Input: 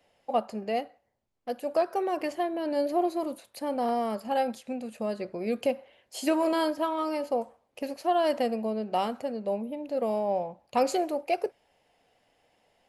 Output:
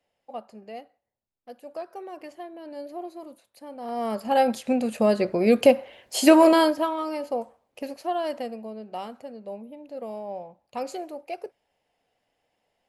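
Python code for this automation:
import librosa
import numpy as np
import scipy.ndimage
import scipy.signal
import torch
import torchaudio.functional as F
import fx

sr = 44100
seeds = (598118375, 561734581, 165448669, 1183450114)

y = fx.gain(x, sr, db=fx.line((3.79, -10.0), (4.05, 2.0), (4.71, 11.0), (6.43, 11.0), (7.02, 0.0), (7.87, 0.0), (8.64, -7.0)))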